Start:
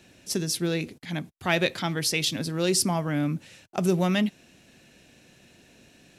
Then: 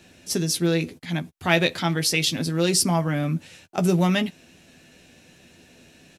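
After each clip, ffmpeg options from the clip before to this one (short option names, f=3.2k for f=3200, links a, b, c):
-filter_complex "[0:a]asplit=2[a][b];[b]adelay=12,volume=-7dB[c];[a][c]amix=inputs=2:normalize=0,volume=2.5dB"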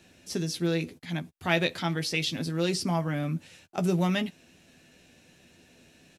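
-filter_complex "[0:a]acrossover=split=5200[a][b];[b]acompressor=threshold=-35dB:ratio=4:attack=1:release=60[c];[a][c]amix=inputs=2:normalize=0,volume=-5.5dB"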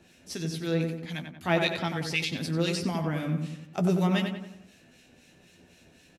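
-filter_complex "[0:a]acrossover=split=1500[a][b];[a]aeval=exprs='val(0)*(1-0.7/2+0.7/2*cos(2*PI*3.9*n/s))':c=same[c];[b]aeval=exprs='val(0)*(1-0.7/2-0.7/2*cos(2*PI*3.9*n/s))':c=same[d];[c][d]amix=inputs=2:normalize=0,asplit=2[e][f];[f]adelay=92,lowpass=f=2.4k:p=1,volume=-5dB,asplit=2[g][h];[h]adelay=92,lowpass=f=2.4k:p=1,volume=0.51,asplit=2[i][j];[j]adelay=92,lowpass=f=2.4k:p=1,volume=0.51,asplit=2[k][l];[l]adelay=92,lowpass=f=2.4k:p=1,volume=0.51,asplit=2[m][n];[n]adelay=92,lowpass=f=2.4k:p=1,volume=0.51,asplit=2[o][p];[p]adelay=92,lowpass=f=2.4k:p=1,volume=0.51[q];[g][i][k][m][o][q]amix=inputs=6:normalize=0[r];[e][r]amix=inputs=2:normalize=0,volume=2.5dB"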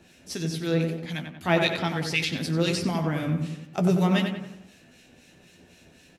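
-af "flanger=delay=9.1:depth=9.4:regen=-88:speed=1.9:shape=triangular,volume=7.5dB"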